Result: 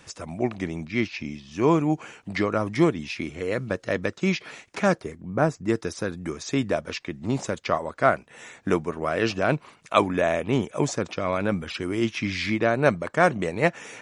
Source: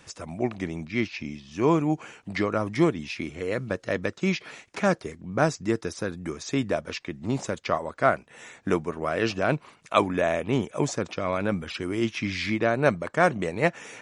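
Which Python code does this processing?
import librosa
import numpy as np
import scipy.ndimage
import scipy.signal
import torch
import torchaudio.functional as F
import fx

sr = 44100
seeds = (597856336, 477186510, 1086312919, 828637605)

y = fx.peak_eq(x, sr, hz=4700.0, db=fx.line((4.96, -3.5), (5.67, -13.5)), octaves=2.3, at=(4.96, 5.67), fade=0.02)
y = F.gain(torch.from_numpy(y), 1.5).numpy()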